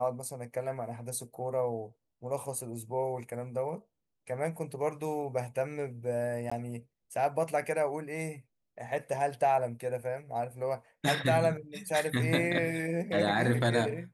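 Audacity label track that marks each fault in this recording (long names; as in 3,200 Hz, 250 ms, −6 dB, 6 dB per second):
6.500000	6.510000	drop-out 15 ms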